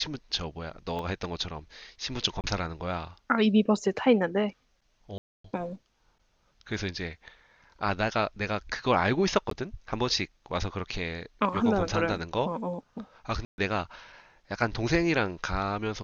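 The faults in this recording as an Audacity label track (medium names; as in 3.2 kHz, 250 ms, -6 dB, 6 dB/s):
0.990000	0.990000	dropout 2 ms
2.410000	2.440000	dropout 28 ms
5.180000	5.440000	dropout 264 ms
9.500000	9.510000	dropout 13 ms
13.450000	13.580000	dropout 131 ms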